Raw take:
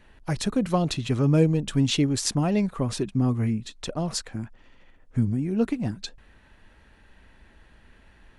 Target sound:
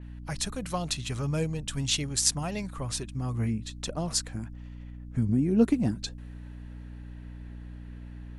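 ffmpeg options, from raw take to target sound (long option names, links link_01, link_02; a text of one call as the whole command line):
ffmpeg -i in.wav -af "asetnsamples=nb_out_samples=441:pad=0,asendcmd='3.34 equalizer g -2;5.29 equalizer g 5.5',equalizer=frequency=280:width=0.71:gain=-12,aeval=exprs='val(0)+0.0126*(sin(2*PI*60*n/s)+sin(2*PI*2*60*n/s)/2+sin(2*PI*3*60*n/s)/3+sin(2*PI*4*60*n/s)/4+sin(2*PI*5*60*n/s)/5)':channel_layout=same,adynamicequalizer=threshold=0.00501:dfrequency=5000:dqfactor=0.7:tfrequency=5000:tqfactor=0.7:attack=5:release=100:ratio=0.375:range=4:mode=boostabove:tftype=highshelf,volume=-2.5dB" out.wav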